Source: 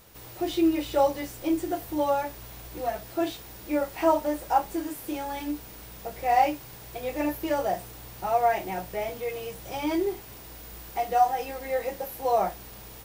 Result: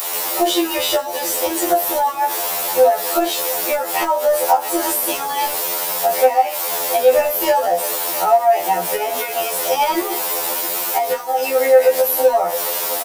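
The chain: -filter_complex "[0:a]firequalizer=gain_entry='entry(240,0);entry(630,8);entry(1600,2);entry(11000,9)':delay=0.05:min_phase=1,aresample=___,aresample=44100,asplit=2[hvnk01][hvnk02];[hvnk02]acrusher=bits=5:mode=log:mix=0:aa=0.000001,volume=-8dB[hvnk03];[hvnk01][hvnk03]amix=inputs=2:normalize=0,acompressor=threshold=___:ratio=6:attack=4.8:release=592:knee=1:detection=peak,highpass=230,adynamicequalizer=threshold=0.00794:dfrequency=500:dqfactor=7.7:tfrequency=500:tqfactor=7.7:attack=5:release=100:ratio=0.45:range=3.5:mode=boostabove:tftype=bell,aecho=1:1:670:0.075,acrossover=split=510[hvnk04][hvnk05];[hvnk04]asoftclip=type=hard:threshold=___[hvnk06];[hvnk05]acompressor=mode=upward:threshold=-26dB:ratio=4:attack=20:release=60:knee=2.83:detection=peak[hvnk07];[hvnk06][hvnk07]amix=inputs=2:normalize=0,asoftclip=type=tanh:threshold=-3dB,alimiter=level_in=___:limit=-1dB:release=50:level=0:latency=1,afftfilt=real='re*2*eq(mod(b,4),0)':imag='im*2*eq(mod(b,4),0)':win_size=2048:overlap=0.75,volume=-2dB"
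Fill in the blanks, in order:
32000, -19dB, -31dB, 12.5dB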